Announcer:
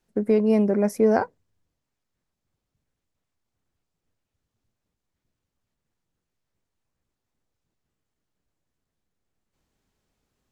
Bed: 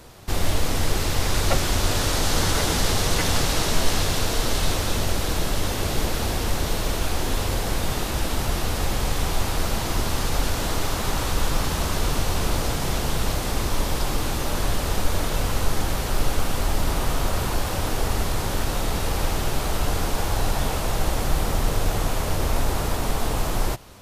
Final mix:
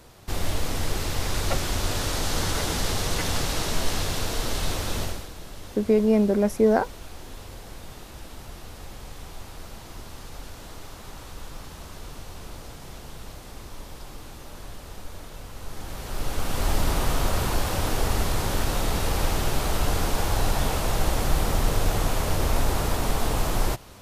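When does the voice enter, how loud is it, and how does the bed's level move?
5.60 s, 0.0 dB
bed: 0:05.03 −4.5 dB
0:05.31 −16.5 dB
0:15.53 −16.5 dB
0:16.69 −0.5 dB

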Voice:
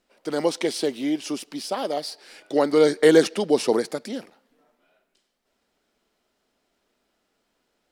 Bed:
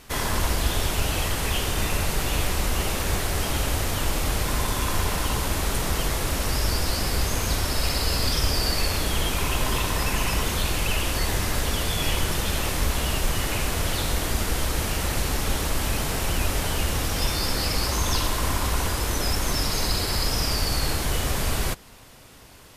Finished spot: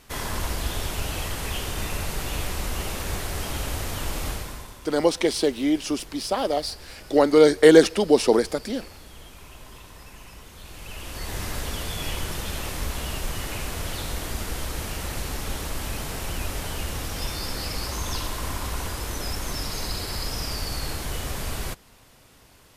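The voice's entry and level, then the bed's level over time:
4.60 s, +2.5 dB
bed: 0:04.29 −4.5 dB
0:04.81 −20.5 dB
0:10.51 −20.5 dB
0:11.42 −5.5 dB

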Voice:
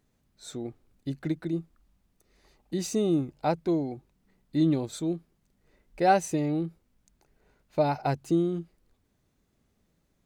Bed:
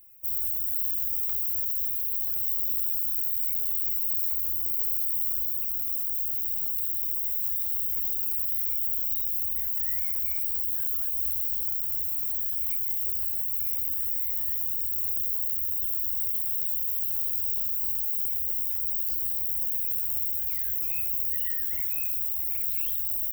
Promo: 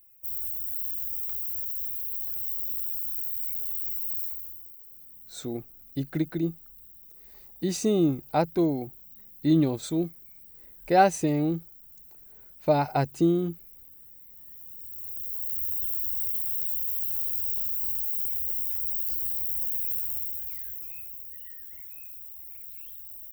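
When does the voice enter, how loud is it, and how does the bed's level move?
4.90 s, +2.5 dB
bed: 0:04.21 −4 dB
0:04.80 −21.5 dB
0:14.27 −21.5 dB
0:15.62 −1 dB
0:19.94 −1 dB
0:21.28 −14 dB

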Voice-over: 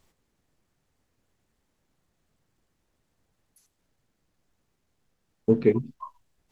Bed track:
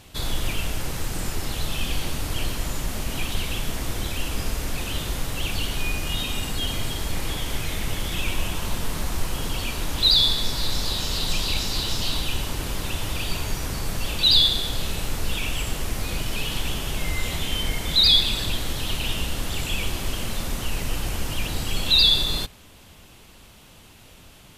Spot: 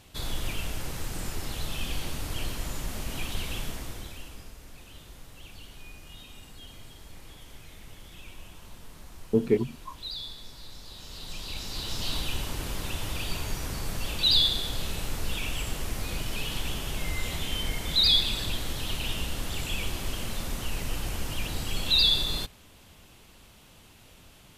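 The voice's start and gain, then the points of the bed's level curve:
3.85 s, −3.0 dB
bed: 0:03.62 −6 dB
0:04.54 −20 dB
0:10.84 −20 dB
0:12.13 −5 dB

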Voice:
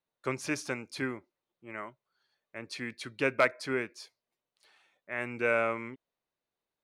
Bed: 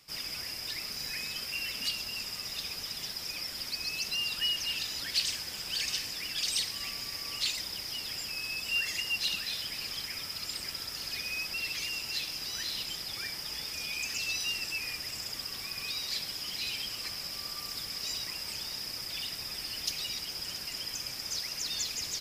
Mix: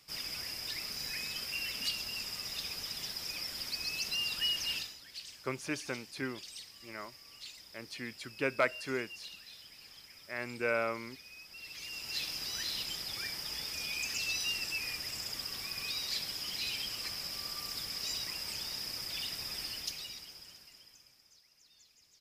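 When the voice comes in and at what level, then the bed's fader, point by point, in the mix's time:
5.20 s, −4.0 dB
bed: 0:04.77 −2 dB
0:04.99 −16.5 dB
0:11.46 −16.5 dB
0:12.23 −1.5 dB
0:19.64 −1.5 dB
0:21.42 −29.5 dB

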